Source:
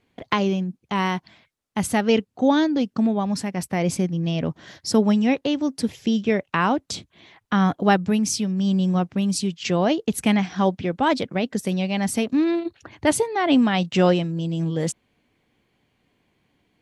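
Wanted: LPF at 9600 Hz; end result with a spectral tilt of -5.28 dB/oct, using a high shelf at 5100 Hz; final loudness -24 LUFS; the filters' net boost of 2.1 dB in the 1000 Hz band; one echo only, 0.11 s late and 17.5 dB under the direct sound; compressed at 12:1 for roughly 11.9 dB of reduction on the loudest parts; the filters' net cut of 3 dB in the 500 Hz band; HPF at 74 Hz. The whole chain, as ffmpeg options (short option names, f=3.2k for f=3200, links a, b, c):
-af "highpass=74,lowpass=9.6k,equalizer=f=500:t=o:g=-5,equalizer=f=1k:t=o:g=4.5,highshelf=f=5.1k:g=-4.5,acompressor=threshold=-26dB:ratio=12,aecho=1:1:110:0.133,volume=7dB"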